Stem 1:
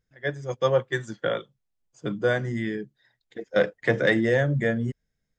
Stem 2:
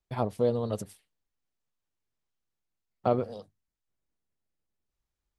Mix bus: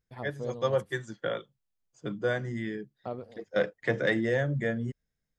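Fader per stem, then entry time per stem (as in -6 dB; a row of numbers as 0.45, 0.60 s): -5.5, -11.5 dB; 0.00, 0.00 s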